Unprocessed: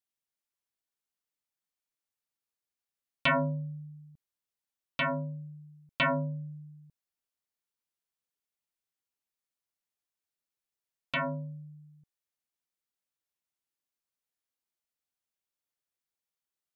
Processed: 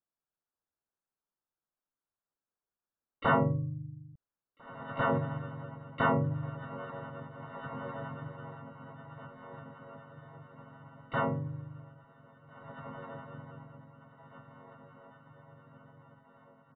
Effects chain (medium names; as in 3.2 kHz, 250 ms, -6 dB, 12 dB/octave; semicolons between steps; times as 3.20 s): steep low-pass 1.7 kHz 72 dB/octave; echo that smears into a reverb 1828 ms, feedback 46%, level -10 dB; harmony voices -7 st -8 dB, -3 st -3 dB, +12 st -14 dB